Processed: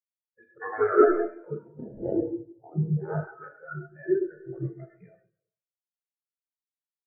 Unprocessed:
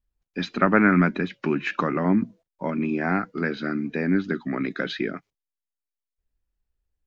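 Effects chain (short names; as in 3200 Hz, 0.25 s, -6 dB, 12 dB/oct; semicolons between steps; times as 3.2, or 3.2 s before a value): Wiener smoothing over 15 samples; low-pass opened by the level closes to 1900 Hz, open at -20.5 dBFS; spectral gate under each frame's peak -10 dB weak; high shelf 3700 Hz -12 dB; in parallel at +1 dB: compressor, threshold -37 dBFS, peak gain reduction 15 dB; 1.61–2.17 on the sum: sample-rate reducer 1200 Hz, jitter 0%; on a send: echo 0.132 s -10.5 dB; on the sum: Schroeder reverb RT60 2.3 s, combs from 26 ms, DRR -2.5 dB; maximiser +11 dB; spectral expander 4:1; gain -4.5 dB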